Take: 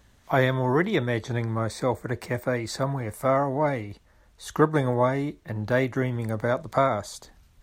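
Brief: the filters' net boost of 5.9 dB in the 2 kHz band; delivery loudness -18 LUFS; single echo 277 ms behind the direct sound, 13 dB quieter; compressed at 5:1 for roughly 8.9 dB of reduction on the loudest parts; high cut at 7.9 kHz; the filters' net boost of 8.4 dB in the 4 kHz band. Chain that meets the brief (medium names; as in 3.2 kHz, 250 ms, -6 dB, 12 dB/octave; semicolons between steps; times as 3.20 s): low-pass 7.9 kHz; peaking EQ 2 kHz +5.5 dB; peaking EQ 4 kHz +8.5 dB; compression 5:1, threshold -24 dBFS; delay 277 ms -13 dB; trim +11.5 dB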